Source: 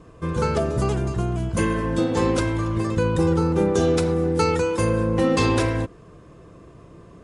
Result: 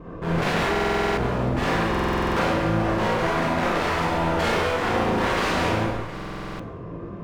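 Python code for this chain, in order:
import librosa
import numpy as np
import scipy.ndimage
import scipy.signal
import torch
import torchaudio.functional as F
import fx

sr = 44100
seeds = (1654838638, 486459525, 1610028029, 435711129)

p1 = scipy.signal.sosfilt(scipy.signal.bessel(2, 1500.0, 'lowpass', norm='mag', fs=sr, output='sos'), x)
p2 = fx.peak_eq(p1, sr, hz=74.0, db=-2.5, octaves=1.6)
p3 = fx.rider(p2, sr, range_db=4, speed_s=2.0)
p4 = p2 + F.gain(torch.from_numpy(p3), 2.0).numpy()
p5 = 10.0 ** (-16.5 / 20.0) * (np.abs((p4 / 10.0 ** (-16.5 / 20.0) + 3.0) % 4.0 - 2.0) - 1.0)
p6 = p5 + fx.echo_single(p5, sr, ms=713, db=-19.5, dry=0)
p7 = fx.clip_asym(p6, sr, top_db=-31.0, bottom_db=-21.0)
p8 = fx.rev_schroeder(p7, sr, rt60_s=0.85, comb_ms=32, drr_db=-5.0)
p9 = fx.chorus_voices(p8, sr, voices=4, hz=1.5, base_ms=22, depth_ms=3.0, mix_pct=30)
y = fx.buffer_glitch(p9, sr, at_s=(0.71, 1.9, 6.13), block=2048, repeats=9)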